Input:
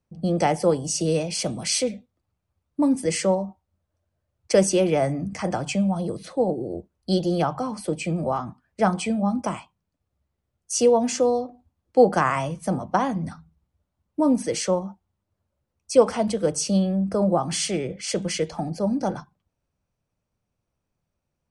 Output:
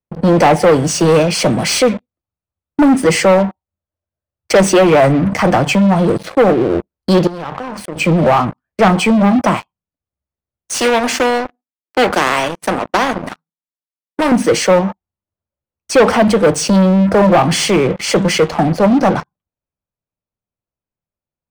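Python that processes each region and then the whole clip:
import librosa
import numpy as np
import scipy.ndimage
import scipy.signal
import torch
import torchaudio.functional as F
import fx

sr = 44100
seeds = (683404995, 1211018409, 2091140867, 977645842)

y = fx.chain(x, sr, fx.notch(hz=690.0, q=9.6),
    fx.level_steps(step_db=20), at=(7.27, 7.96))
y = fx.chain(y, sr, fx.highpass(hz=210.0, slope=24),
    fx.power_curve(exponent=1.4),
    fx.spectral_comp(ratio=2.0), at=(10.74, 14.32))
y = fx.leveller(y, sr, passes=5)
y = fx.bass_treble(y, sr, bass_db=-3, treble_db=-10)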